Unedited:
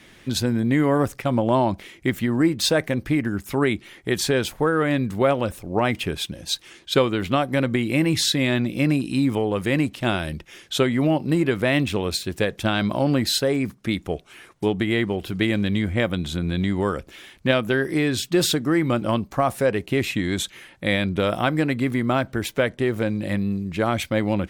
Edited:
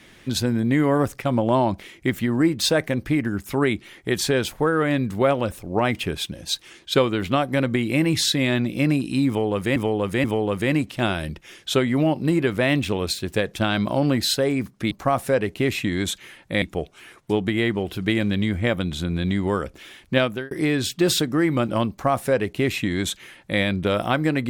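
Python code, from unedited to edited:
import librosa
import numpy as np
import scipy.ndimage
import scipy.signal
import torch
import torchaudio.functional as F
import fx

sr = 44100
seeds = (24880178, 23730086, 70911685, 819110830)

y = fx.edit(x, sr, fx.repeat(start_s=9.28, length_s=0.48, count=3),
    fx.fade_out_span(start_s=17.56, length_s=0.28),
    fx.duplicate(start_s=19.23, length_s=1.71, to_s=13.95), tone=tone)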